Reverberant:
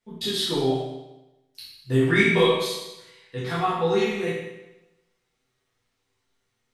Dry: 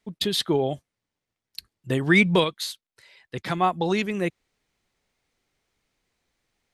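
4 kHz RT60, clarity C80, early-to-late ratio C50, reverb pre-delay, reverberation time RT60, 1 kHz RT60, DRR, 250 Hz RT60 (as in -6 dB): 0.90 s, 3.0 dB, 0.0 dB, 8 ms, 1.0 s, 1.0 s, -10.5 dB, 1.0 s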